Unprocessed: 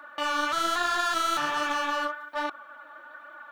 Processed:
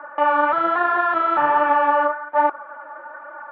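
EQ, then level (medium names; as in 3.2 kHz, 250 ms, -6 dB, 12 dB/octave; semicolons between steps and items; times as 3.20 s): cabinet simulation 120–2000 Hz, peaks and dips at 390 Hz +5 dB, 560 Hz +7 dB, 880 Hz +10 dB; +6.0 dB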